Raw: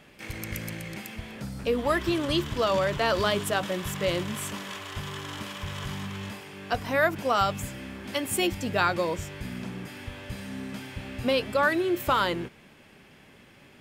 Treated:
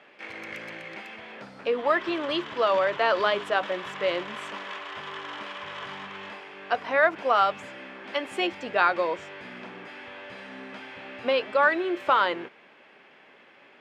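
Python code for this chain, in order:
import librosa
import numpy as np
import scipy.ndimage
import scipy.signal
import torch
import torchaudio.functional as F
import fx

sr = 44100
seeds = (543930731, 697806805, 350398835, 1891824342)

y = fx.bandpass_edges(x, sr, low_hz=460.0, high_hz=2700.0)
y = F.gain(torch.from_numpy(y), 3.5).numpy()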